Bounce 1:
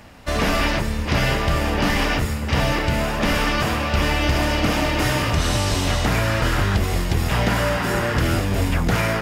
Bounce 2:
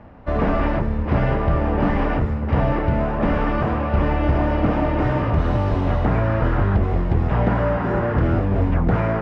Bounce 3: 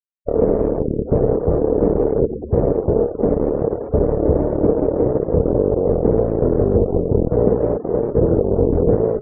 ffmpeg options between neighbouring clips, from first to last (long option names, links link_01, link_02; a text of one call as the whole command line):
ffmpeg -i in.wav -af "lowpass=1100,volume=2dB" out.wav
ffmpeg -i in.wav -af "aeval=exprs='0.422*(cos(1*acos(clip(val(0)/0.422,-1,1)))-cos(1*PI/2))+0.119*(cos(7*acos(clip(val(0)/0.422,-1,1)))-cos(7*PI/2))':channel_layout=same,afftfilt=real='re*gte(hypot(re,im),0.0891)':imag='im*gte(hypot(re,im),0.0891)':win_size=1024:overlap=0.75,lowpass=frequency=460:width_type=q:width=4.9,volume=-1.5dB" out.wav